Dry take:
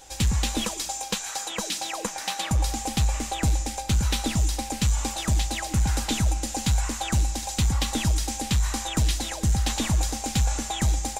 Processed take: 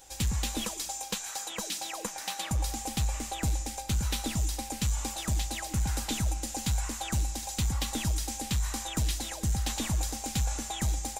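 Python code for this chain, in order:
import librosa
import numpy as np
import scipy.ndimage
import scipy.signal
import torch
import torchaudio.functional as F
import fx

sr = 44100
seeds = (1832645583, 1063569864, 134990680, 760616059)

y = fx.high_shelf(x, sr, hz=12000.0, db=10.5)
y = y * 10.0 ** (-6.5 / 20.0)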